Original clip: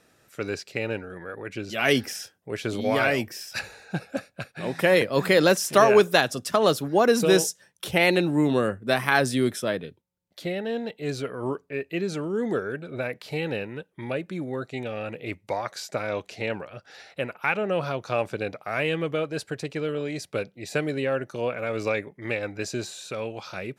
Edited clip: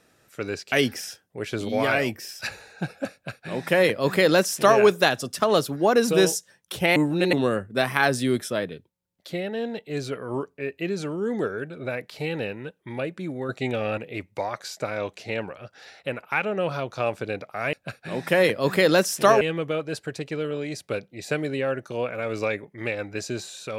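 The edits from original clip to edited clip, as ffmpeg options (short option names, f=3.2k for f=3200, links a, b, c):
-filter_complex "[0:a]asplit=8[a][b][c][d][e][f][g][h];[a]atrim=end=0.722[i];[b]atrim=start=1.838:end=8.082[j];[c]atrim=start=8.078:end=8.452,asetpts=PTS-STARTPTS,areverse[k];[d]atrim=start=8.448:end=14.612[l];[e]atrim=start=14.608:end=15.102,asetpts=PTS-STARTPTS,volume=5.5dB[m];[f]atrim=start=15.098:end=18.852[n];[g]atrim=start=4.248:end=5.932[o];[h]atrim=start=18.848[p];[i][j]acrossfade=d=0.004:c1=hsin:c2=hsin[q];[q][k]acrossfade=d=0.004:c1=hsin:c2=hsin[r];[r][l]acrossfade=d=0.004:c1=hsin:c2=hsin[s];[s][m]acrossfade=d=0.004:c1=hsin:c2=hsin[t];[t][n]acrossfade=d=0.004:c1=hsin:c2=hsin[u];[u][o]acrossfade=d=0.004:c1=hsin:c2=hsin[v];[v][p]acrossfade=d=0.004:c1=hsin:c2=hsin"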